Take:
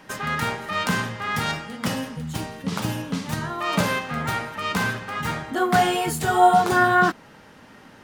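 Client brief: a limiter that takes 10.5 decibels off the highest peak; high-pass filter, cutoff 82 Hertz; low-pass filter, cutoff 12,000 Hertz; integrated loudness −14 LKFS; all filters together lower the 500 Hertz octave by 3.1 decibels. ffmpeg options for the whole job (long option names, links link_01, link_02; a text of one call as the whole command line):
ffmpeg -i in.wav -af "highpass=82,lowpass=12000,equalizer=frequency=500:width_type=o:gain=-5.5,volume=13.5dB,alimiter=limit=-3.5dB:level=0:latency=1" out.wav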